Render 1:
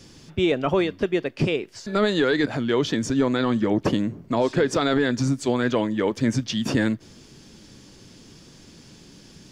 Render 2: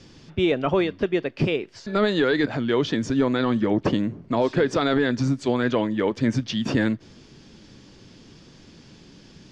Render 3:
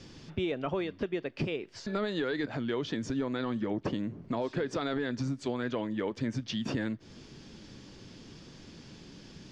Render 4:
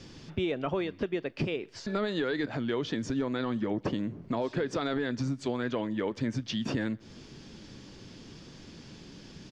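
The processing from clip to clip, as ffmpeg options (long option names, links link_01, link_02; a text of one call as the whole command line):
ffmpeg -i in.wav -af "lowpass=4900" out.wav
ffmpeg -i in.wav -af "acompressor=threshold=-32dB:ratio=2.5,volume=-1.5dB" out.wav
ffmpeg -i in.wav -filter_complex "[0:a]asplit=2[link_01][link_02];[link_02]adelay=128.3,volume=-28dB,highshelf=frequency=4000:gain=-2.89[link_03];[link_01][link_03]amix=inputs=2:normalize=0,volume=1.5dB" out.wav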